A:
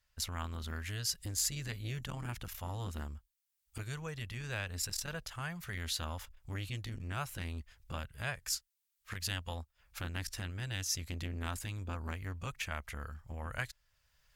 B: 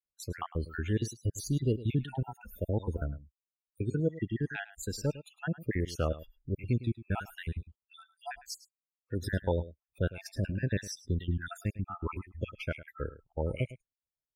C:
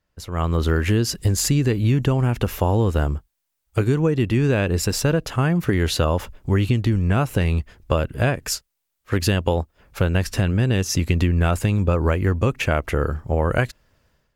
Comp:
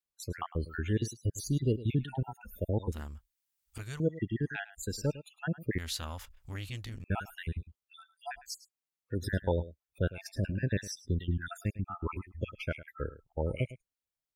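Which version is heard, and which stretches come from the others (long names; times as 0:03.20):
B
0:02.92–0:04.00: punch in from A
0:05.78–0:07.04: punch in from A
not used: C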